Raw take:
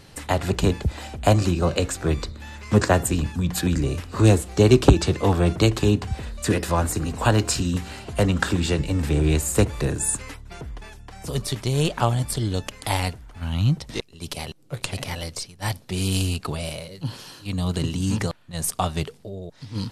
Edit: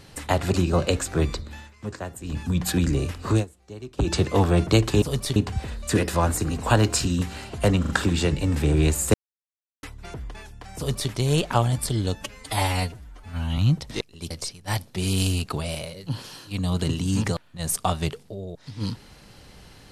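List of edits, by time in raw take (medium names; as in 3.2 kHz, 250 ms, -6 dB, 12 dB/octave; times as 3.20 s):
0.54–1.43 s: delete
2.41–3.34 s: dip -15.5 dB, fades 0.22 s
4.18–5.02 s: dip -23.5 dB, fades 0.16 s
8.36 s: stutter 0.04 s, 3 plays
9.61–10.30 s: mute
11.24–11.58 s: copy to 5.91 s
12.62–13.57 s: stretch 1.5×
14.30–15.25 s: delete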